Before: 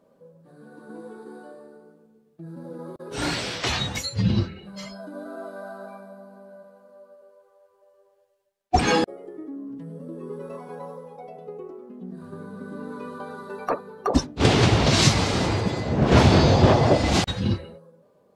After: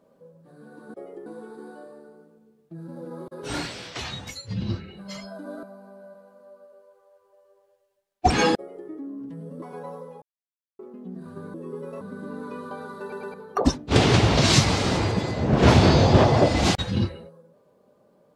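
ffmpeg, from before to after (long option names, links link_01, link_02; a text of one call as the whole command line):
ffmpeg -i in.wav -filter_complex "[0:a]asplit=14[link_01][link_02][link_03][link_04][link_05][link_06][link_07][link_08][link_09][link_10][link_11][link_12][link_13][link_14];[link_01]atrim=end=0.942[link_15];[link_02]atrim=start=9.048:end=9.372[link_16];[link_03]atrim=start=0.938:end=3.39,asetpts=PTS-STARTPTS,afade=type=out:start_time=2.162:duration=0.29:silence=0.398107[link_17];[link_04]atrim=start=3.39:end=4.32,asetpts=PTS-STARTPTS,volume=-8dB[link_18];[link_05]atrim=start=4.32:end=5.312,asetpts=PTS-STARTPTS,afade=type=in:duration=0.29:silence=0.398107[link_19];[link_06]atrim=start=6.118:end=10.112[link_20];[link_07]atrim=start=10.578:end=11.18,asetpts=PTS-STARTPTS,afade=type=out:start_time=0.598:duration=0.004:curve=hsin[link_21];[link_08]atrim=start=11.18:end=11.75,asetpts=PTS-STARTPTS,volume=0[link_22];[link_09]atrim=start=11.75:end=12.502,asetpts=PTS-STARTPTS,afade=type=in:duration=0.004:curve=hsin[link_23];[link_10]atrim=start=10.108:end=10.582[link_24];[link_11]atrim=start=12.498:end=13.612[link_25];[link_12]atrim=start=13.498:end=13.612[link_26];[link_13]atrim=start=13.498:end=13.612[link_27];[link_14]atrim=start=13.828[link_28];[link_15][link_16]acrossfade=duration=0.004:curve1=hsin:curve2=hsin[link_29];[link_17][link_18][link_19]concat=n=3:v=0:a=1[link_30];[link_29][link_30]acrossfade=duration=0.004:curve1=hsin:curve2=hsin[link_31];[link_31][link_20]acrossfade=duration=0.004:curve1=hsin:curve2=hsin[link_32];[link_21][link_22][link_23]concat=n=3:v=0:a=1[link_33];[link_32][link_33]acrossfade=duration=0.004:curve1=hsin:curve2=hsin[link_34];[link_34][link_24]acrossfade=duration=0.004:curve1=hsin:curve2=hsin[link_35];[link_35][link_25]acrossfade=duration=0.004:curve1=hsin:curve2=hsin[link_36];[link_36][link_26]acrossfade=duration=0.004:curve1=hsin:curve2=hsin[link_37];[link_37][link_27]acrossfade=duration=0.004:curve1=hsin:curve2=hsin[link_38];[link_38][link_28]acrossfade=duration=0.004:curve1=hsin:curve2=hsin" out.wav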